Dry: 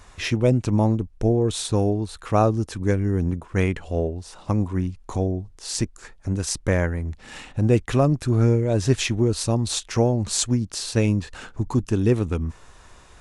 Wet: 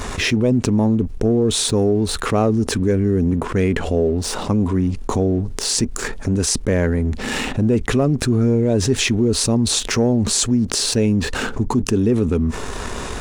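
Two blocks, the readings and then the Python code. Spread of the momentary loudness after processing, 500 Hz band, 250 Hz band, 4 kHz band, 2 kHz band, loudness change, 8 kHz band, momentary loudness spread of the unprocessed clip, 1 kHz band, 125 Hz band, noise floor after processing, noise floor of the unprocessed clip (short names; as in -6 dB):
5 LU, +4.5 dB, +6.0 dB, +8.5 dB, +7.0 dB, +4.5 dB, +8.0 dB, 9 LU, +2.5 dB, +1.5 dB, -28 dBFS, -49 dBFS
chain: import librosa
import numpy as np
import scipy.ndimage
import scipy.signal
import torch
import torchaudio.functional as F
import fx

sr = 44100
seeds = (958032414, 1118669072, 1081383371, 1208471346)

y = fx.leveller(x, sr, passes=1)
y = fx.small_body(y, sr, hz=(240.0, 410.0), ring_ms=35, db=9)
y = fx.env_flatten(y, sr, amount_pct=70)
y = y * librosa.db_to_amplitude(-8.0)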